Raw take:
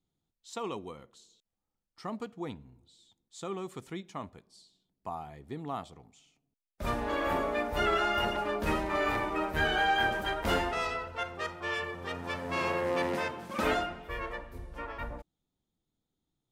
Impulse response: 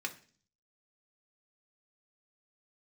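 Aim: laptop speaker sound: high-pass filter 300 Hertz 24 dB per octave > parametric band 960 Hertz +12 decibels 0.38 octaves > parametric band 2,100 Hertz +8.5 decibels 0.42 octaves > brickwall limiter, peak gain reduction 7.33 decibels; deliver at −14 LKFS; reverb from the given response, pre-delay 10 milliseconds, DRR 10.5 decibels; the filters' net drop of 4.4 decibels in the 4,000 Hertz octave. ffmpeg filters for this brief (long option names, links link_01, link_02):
-filter_complex "[0:a]equalizer=frequency=4000:width_type=o:gain=-9,asplit=2[link_01][link_02];[1:a]atrim=start_sample=2205,adelay=10[link_03];[link_02][link_03]afir=irnorm=-1:irlink=0,volume=-13dB[link_04];[link_01][link_04]amix=inputs=2:normalize=0,highpass=frequency=300:width=0.5412,highpass=frequency=300:width=1.3066,equalizer=frequency=960:width_type=o:width=0.38:gain=12,equalizer=frequency=2100:width_type=o:width=0.42:gain=8.5,volume=18.5dB,alimiter=limit=-3dB:level=0:latency=1"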